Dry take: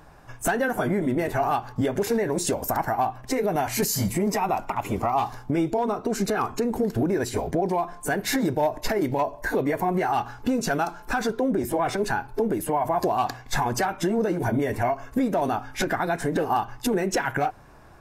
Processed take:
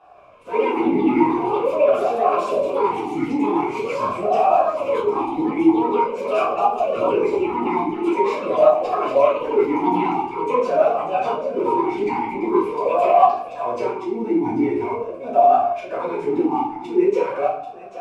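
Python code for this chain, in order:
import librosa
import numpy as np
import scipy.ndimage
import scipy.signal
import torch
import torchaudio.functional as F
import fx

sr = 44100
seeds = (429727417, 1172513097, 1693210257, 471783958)

y = fx.cvsd(x, sr, bps=64000)
y = fx.auto_swell(y, sr, attack_ms=131.0)
y = y + 10.0 ** (-12.5 / 20.0) * np.pad(y, (int(789 * sr / 1000.0), 0))[:len(y)]
y = fx.room_shoebox(y, sr, seeds[0], volume_m3=84.0, walls='mixed', distance_m=1.9)
y = fx.echo_pitch(y, sr, ms=155, semitones=5, count=2, db_per_echo=-3.0)
y = fx.vowel_sweep(y, sr, vowels='a-u', hz=0.45)
y = y * 10.0 ** (5.5 / 20.0)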